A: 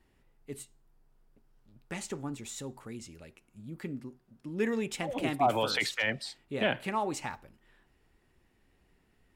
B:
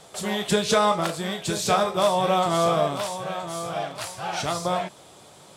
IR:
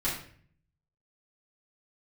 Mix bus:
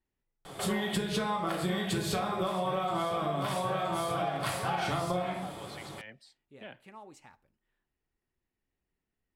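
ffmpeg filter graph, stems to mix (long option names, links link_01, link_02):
-filter_complex "[0:a]volume=-18dB[link_01];[1:a]acompressor=threshold=-26dB:ratio=6,equalizer=frequency=6300:width=1.1:gain=-10.5,adelay=450,volume=1dB,asplit=2[link_02][link_03];[link_03]volume=-6dB[link_04];[2:a]atrim=start_sample=2205[link_05];[link_04][link_05]afir=irnorm=-1:irlink=0[link_06];[link_01][link_02][link_06]amix=inputs=3:normalize=0,acompressor=threshold=-28dB:ratio=6"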